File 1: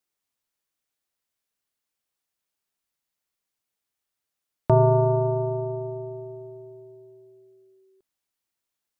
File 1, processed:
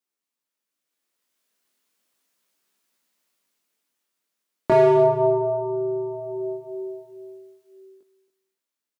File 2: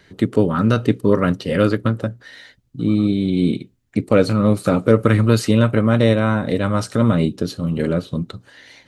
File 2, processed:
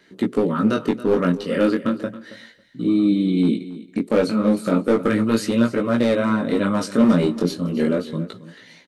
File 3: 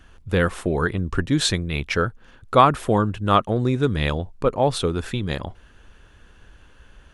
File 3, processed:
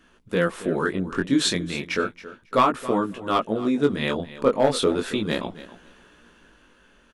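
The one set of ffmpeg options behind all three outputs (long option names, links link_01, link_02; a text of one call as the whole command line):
ffmpeg -i in.wav -filter_complex "[0:a]lowshelf=frequency=150:width_type=q:width=1.5:gain=-12.5,bandreject=frequency=780:width=12,dynaudnorm=framelen=180:gausssize=13:maxgain=14dB,asoftclip=type=hard:threshold=-7dB,flanger=delay=16:depth=6.8:speed=0.34,asplit=2[link_01][link_02];[link_02]aecho=0:1:274|548:0.158|0.0254[link_03];[link_01][link_03]amix=inputs=2:normalize=0" out.wav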